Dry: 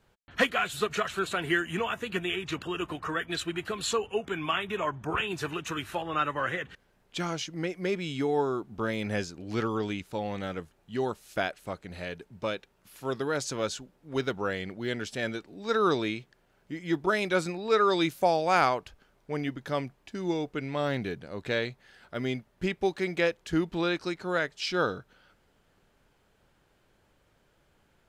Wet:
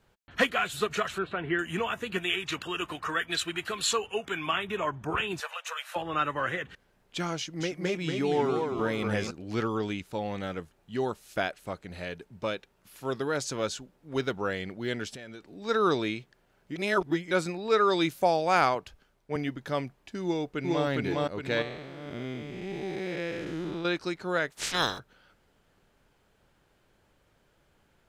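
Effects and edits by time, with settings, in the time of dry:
1.18–1.59 air absorption 440 m
2.18–4.47 tilt shelf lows -4.5 dB, about 760 Hz
5.4–5.96 brick-wall FIR high-pass 470 Hz
7.37–9.31 warbling echo 0.236 s, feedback 48%, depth 163 cents, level -4.5 dB
15.14–15.62 compressor 16:1, threshold -39 dBFS
16.76–17.31 reverse
18.75–19.36 three-band expander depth 40%
20.23–20.86 echo throw 0.41 s, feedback 50%, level 0 dB
21.62–23.85 time blur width 0.336 s
24.5–24.98 spectral limiter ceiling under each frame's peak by 30 dB

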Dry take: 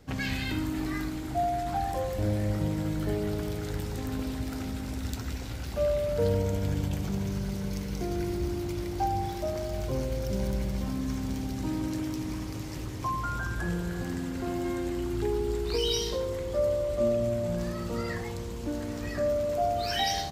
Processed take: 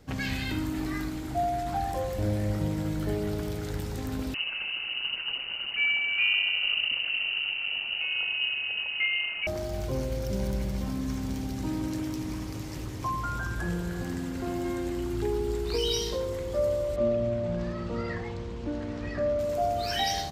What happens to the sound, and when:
4.34–9.47 inverted band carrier 2900 Hz
16.96–19.39 LPF 3800 Hz

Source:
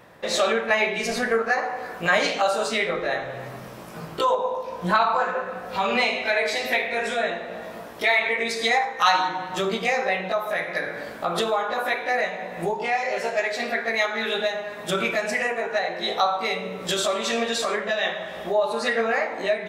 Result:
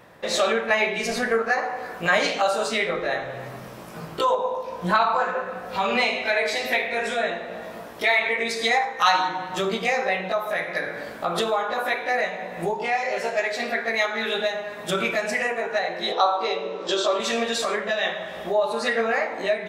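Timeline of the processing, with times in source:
16.12–17.2 speaker cabinet 330–6200 Hz, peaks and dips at 340 Hz +9 dB, 500 Hz +5 dB, 1000 Hz +5 dB, 2100 Hz -8 dB

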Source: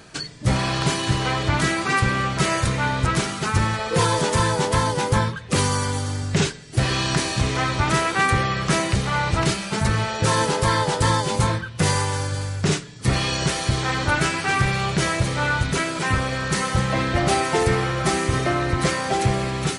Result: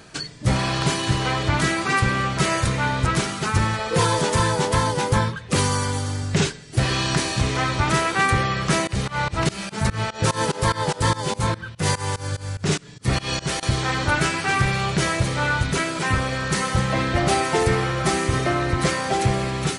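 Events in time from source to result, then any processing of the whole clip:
8.87–13.63 pump 146 bpm, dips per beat 2, -23 dB, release 0.172 s

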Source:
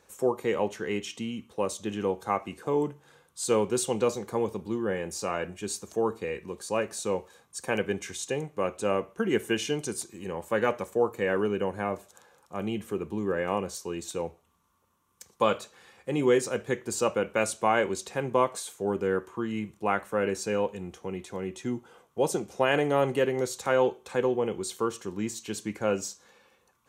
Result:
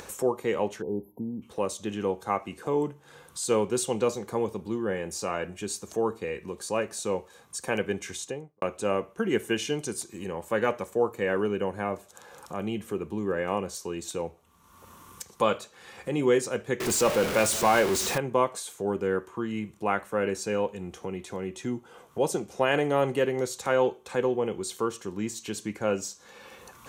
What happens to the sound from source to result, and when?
0.82–1.42 spectral delete 1000–11000 Hz
8.1–8.62 studio fade out
16.8–18.18 zero-crossing step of -24.5 dBFS
whole clip: upward compressor, threshold -31 dBFS

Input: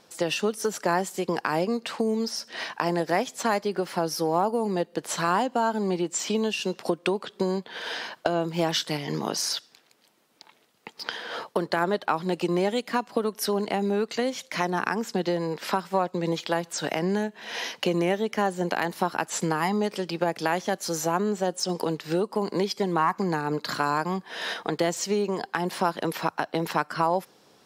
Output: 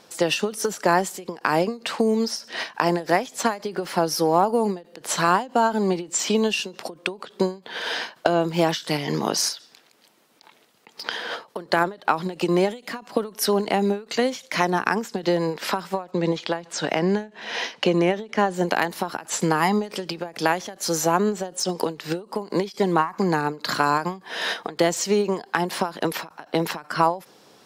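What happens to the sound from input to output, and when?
16.11–18.54 air absorption 60 m
whole clip: low shelf 81 Hz -6.5 dB; ending taper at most 190 dB/s; gain +5.5 dB

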